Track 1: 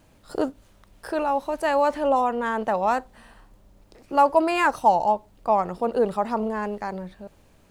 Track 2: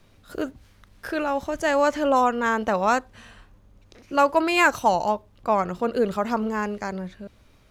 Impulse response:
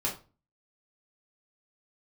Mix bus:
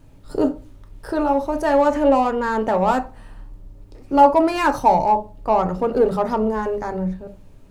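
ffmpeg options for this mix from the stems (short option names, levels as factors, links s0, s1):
-filter_complex "[0:a]lowshelf=f=320:g=12,volume=0.531,asplit=3[s0][s1][s2];[s1]volume=0.531[s3];[1:a]dynaudnorm=f=470:g=7:m=3.76,asoftclip=type=tanh:threshold=0.141,volume=0.376[s4];[s2]apad=whole_len=339814[s5];[s4][s5]sidechaingate=range=0.0224:threshold=0.01:ratio=16:detection=peak[s6];[2:a]atrim=start_sample=2205[s7];[s3][s7]afir=irnorm=-1:irlink=0[s8];[s0][s6][s8]amix=inputs=3:normalize=0"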